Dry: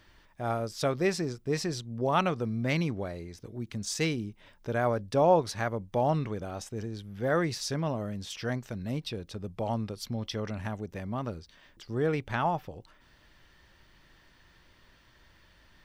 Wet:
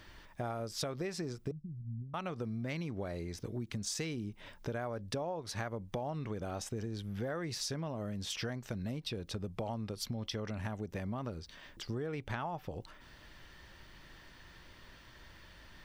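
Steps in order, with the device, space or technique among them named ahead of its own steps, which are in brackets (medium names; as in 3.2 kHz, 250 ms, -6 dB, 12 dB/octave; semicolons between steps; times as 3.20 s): serial compression, leveller first (compression 2.5:1, threshold -30 dBFS, peak gain reduction 9 dB; compression 6:1, threshold -40 dBFS, peak gain reduction 14 dB); 1.51–2.14 s: inverse Chebyshev low-pass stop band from 650 Hz, stop band 60 dB; trim +4.5 dB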